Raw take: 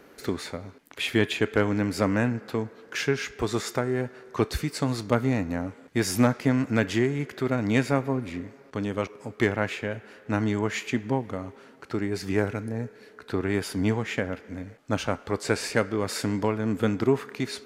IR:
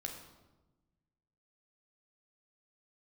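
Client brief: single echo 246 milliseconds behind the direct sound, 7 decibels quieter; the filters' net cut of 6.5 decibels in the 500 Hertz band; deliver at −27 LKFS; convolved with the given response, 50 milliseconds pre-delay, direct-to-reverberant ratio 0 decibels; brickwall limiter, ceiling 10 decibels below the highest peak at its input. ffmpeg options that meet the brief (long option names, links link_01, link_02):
-filter_complex "[0:a]equalizer=frequency=500:width_type=o:gain=-8.5,alimiter=limit=-19dB:level=0:latency=1,aecho=1:1:246:0.447,asplit=2[link_01][link_02];[1:a]atrim=start_sample=2205,adelay=50[link_03];[link_02][link_03]afir=irnorm=-1:irlink=0,volume=1.5dB[link_04];[link_01][link_04]amix=inputs=2:normalize=0,volume=1dB"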